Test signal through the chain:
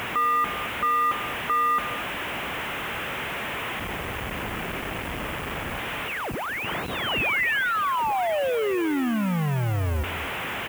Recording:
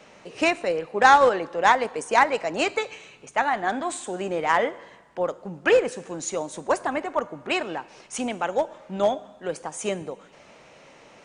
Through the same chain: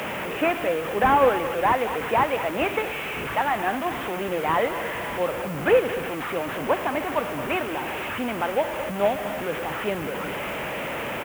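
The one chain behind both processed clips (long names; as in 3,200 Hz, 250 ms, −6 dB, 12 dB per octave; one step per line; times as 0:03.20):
linear delta modulator 16 kbit/s, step −24 dBFS
high-pass filter 44 Hz
background noise blue −46 dBFS
single-tap delay 218 ms −13 dB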